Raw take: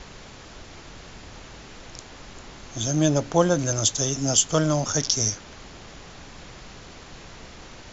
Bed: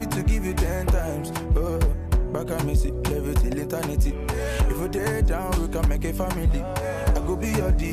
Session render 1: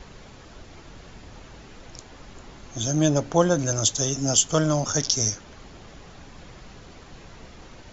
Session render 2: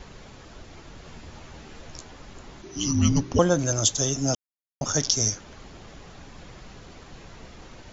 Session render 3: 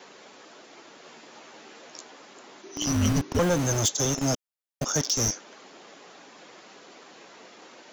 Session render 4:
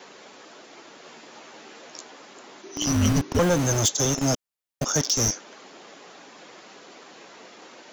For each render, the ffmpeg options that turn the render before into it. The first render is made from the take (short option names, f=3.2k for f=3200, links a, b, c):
-af "afftdn=nr=6:nf=-44"
-filter_complex "[0:a]asettb=1/sr,asplit=3[a][b][c];[a]atrim=end=1.044[d];[b]atrim=start=1.04:end=2.12,asetpts=PTS-STARTPTS,afade=t=in:d=0.004:c=qsin,afade=t=out:st=1.076:d=0.004:c=qsin,asplit=2[e][f];[f]adelay=13,volume=-5dB[g];[e][g]amix=inputs=2:normalize=0,atrim=end_sample=47628[h];[c]atrim=start=2.116[i];[d][h]acrossfade=d=0.004:c1=hsin:c2=qsin[j];[j][i]acrossfade=d=0.004:c1=qsin:c2=hsin,asettb=1/sr,asplit=3[k][l][m];[k]atrim=end=2.624[n];[l]atrim=start=2.62:end=3.39,asetpts=PTS-STARTPTS,afade=t=in:d=0.004:c=qsin,afade=t=out:st=0.766:d=0.004:c=qsin,afreqshift=-410[o];[m]atrim=start=3.386[p];[n][o]acrossfade=d=0.004:c1=hsin:c2=qsin[q];[q][p]acrossfade=d=0.004:c1=qsin:c2=hsin,asplit=3[r][s][t];[r]atrim=end=4.35,asetpts=PTS-STARTPTS,afade=t=out:st=4.346:d=0.004:c=hsin[u];[s]atrim=start=4.35:end=4.81,asetpts=PTS-STARTPTS,volume=0[v];[t]atrim=start=4.81,asetpts=PTS-STARTPTS,afade=t=in:d=0.004:c=hsin[w];[u][v][w]concat=n=3:v=0:a=1"
-filter_complex "[0:a]acrossover=split=250|3000[a][b][c];[a]acrusher=bits=4:mix=0:aa=0.000001[d];[d][b][c]amix=inputs=3:normalize=0,asoftclip=type=tanh:threshold=-16.5dB"
-af "volume=2.5dB"